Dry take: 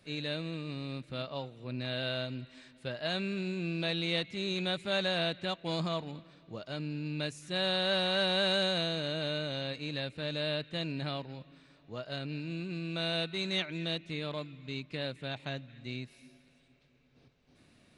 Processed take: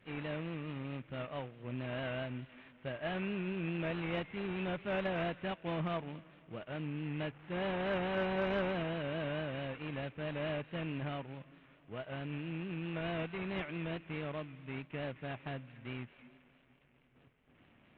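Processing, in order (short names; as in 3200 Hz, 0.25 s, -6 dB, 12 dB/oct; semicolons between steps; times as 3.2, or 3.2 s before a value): CVSD 16 kbps; vibrato 4.6 Hz 56 cents; added harmonics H 3 -19 dB, 5 -31 dB, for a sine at -20.5 dBFS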